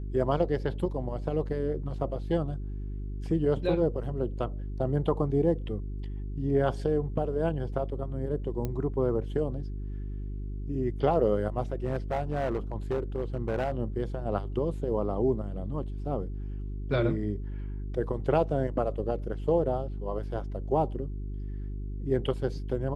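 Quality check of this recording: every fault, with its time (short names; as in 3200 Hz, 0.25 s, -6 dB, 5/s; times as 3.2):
hum 50 Hz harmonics 8 -35 dBFS
8.65 pop -19 dBFS
11.84–13.72 clipped -24 dBFS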